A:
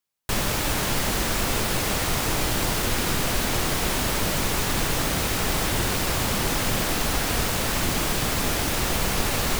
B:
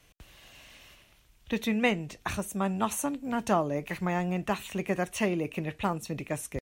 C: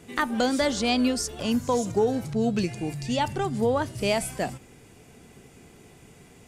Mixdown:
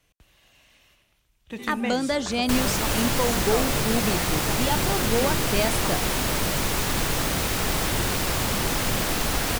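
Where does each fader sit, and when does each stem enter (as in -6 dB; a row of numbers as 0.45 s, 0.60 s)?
-0.5 dB, -5.5 dB, -1.0 dB; 2.20 s, 0.00 s, 1.50 s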